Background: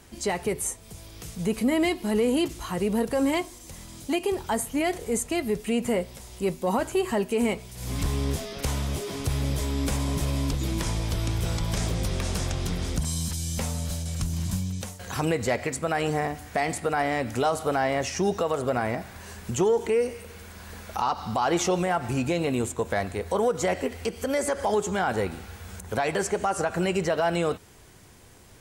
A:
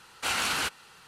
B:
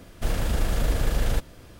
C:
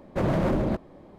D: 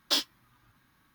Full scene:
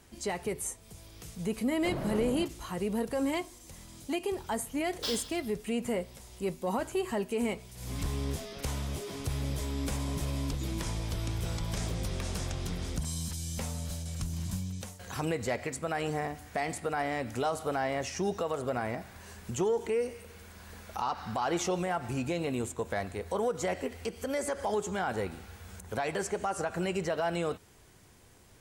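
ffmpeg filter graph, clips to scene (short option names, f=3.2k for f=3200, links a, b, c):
-filter_complex "[0:a]volume=-6.5dB[a];[4:a]aecho=1:1:40|88|145.6|214.7|297.7|397.2:0.631|0.398|0.251|0.158|0.1|0.0631[b];[1:a]bandpass=f=1.6k:t=q:w=4.4:csg=0[c];[3:a]atrim=end=1.18,asetpts=PTS-STARTPTS,volume=-11.5dB,afade=t=in:d=0.004:c=hsin,afade=t=out:st=1.176:d=0.004:c=hsin,adelay=1680[d];[b]atrim=end=1.14,asetpts=PTS-STARTPTS,volume=-9.5dB,afade=t=in:d=0.004:c=hsin,afade=t=out:st=1.136:d=0.004:c=hsin,adelay=4920[e];[c]atrim=end=1.07,asetpts=PTS-STARTPTS,volume=-16.5dB,afade=t=in:d=0.004:c=hsin,afade=t=out:st=1.066:d=0.004:c=hsin,adelay=20890[f];[a][d][e][f]amix=inputs=4:normalize=0"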